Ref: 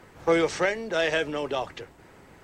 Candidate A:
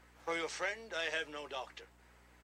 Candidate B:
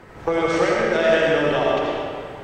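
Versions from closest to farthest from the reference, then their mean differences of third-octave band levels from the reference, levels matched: A, B; 4.5, 7.0 dB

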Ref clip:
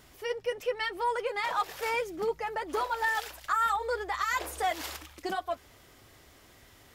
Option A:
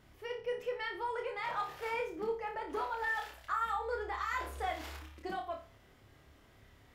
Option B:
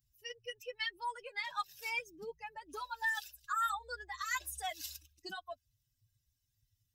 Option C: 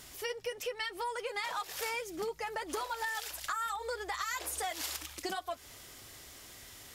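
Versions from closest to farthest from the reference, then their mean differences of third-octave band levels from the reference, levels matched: A, C, B; 4.5, 6.0, 11.5 dB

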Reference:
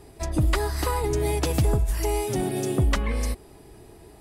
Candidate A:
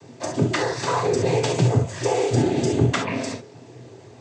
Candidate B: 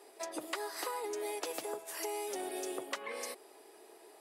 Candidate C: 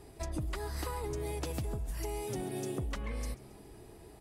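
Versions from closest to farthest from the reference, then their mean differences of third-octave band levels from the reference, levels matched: C, A, B; 3.5, 6.0, 9.0 dB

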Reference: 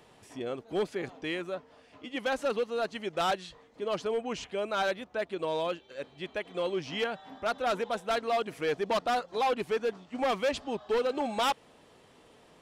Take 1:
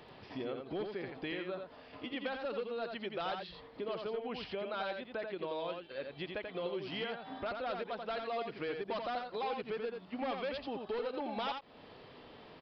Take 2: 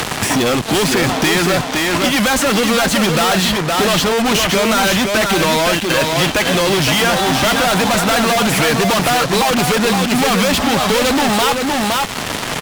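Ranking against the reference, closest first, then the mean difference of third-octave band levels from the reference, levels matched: 1, 2; 7.0, 14.5 dB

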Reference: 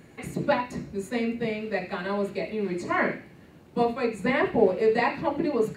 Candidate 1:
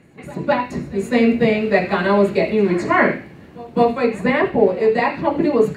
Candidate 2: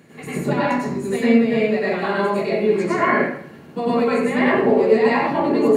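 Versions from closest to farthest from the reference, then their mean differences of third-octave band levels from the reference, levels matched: 1, 2; 3.0, 6.0 dB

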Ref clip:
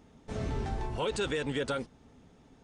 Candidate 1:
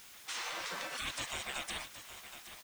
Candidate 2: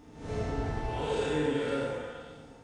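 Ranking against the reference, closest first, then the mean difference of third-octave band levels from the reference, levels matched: 2, 1; 5.5, 16.5 dB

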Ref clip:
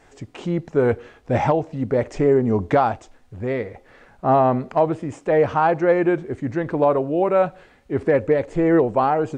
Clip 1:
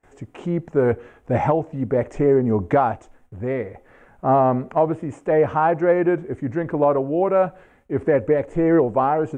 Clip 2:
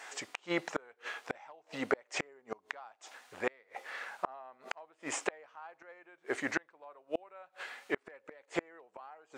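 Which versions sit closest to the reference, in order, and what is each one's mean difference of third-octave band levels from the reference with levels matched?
1, 2; 1.5, 13.0 dB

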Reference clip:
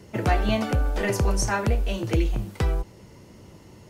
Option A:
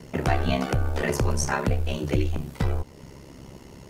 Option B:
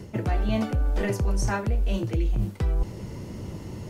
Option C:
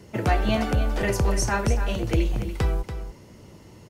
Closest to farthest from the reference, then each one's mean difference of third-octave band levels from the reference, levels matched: C, A, B; 2.0, 3.0, 5.5 dB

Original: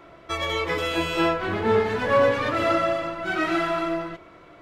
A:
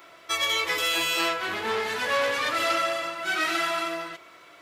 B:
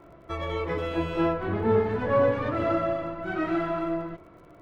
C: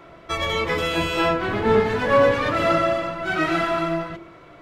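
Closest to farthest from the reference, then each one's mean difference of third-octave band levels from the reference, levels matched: C, B, A; 1.0, 5.5, 8.0 dB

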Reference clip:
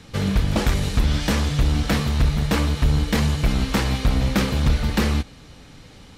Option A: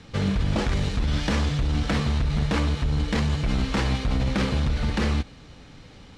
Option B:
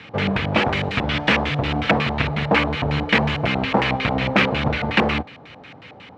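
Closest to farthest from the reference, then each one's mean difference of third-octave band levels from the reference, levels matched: A, B; 3.0, 8.0 dB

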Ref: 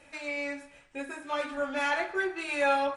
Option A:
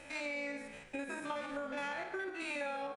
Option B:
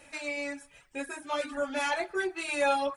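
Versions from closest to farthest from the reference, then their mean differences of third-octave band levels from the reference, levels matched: B, A; 3.0, 6.5 dB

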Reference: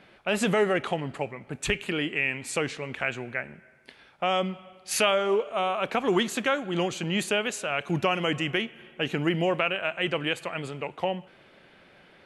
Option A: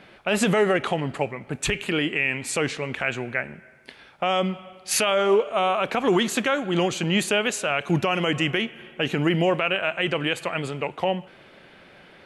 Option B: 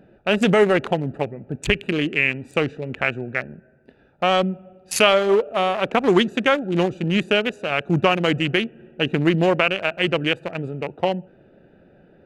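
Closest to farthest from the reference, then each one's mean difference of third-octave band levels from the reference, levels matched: A, B; 1.5, 4.5 dB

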